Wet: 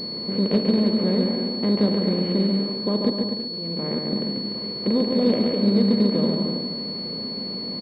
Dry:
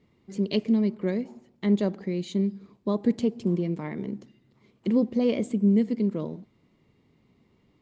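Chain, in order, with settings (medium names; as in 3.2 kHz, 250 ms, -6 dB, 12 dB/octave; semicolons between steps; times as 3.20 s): spectral levelling over time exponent 0.4; 3.09–4.13 s: slow attack 524 ms; on a send: bouncing-ball echo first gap 140 ms, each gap 0.75×, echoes 5; on the sum: class-D stage that switches slowly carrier 4.4 kHz; trim -2 dB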